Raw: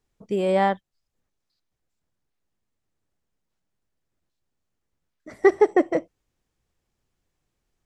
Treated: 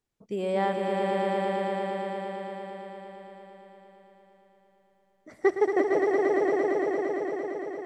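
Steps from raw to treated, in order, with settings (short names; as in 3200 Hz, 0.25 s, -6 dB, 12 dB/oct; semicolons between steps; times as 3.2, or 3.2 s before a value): low shelf 62 Hz -9 dB; swelling echo 0.114 s, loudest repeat 5, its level -4.5 dB; gain -6.5 dB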